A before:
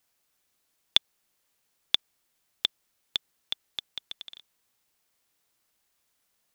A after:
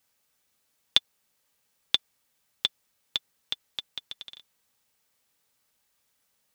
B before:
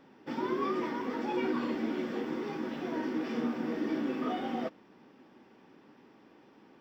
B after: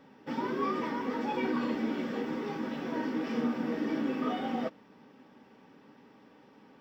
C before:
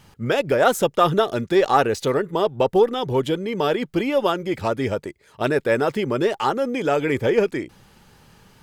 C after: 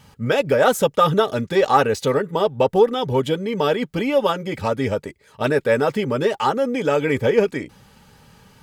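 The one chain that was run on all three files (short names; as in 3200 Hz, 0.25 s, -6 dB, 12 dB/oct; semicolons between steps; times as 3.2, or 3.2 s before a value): notch comb 350 Hz; gain +2.5 dB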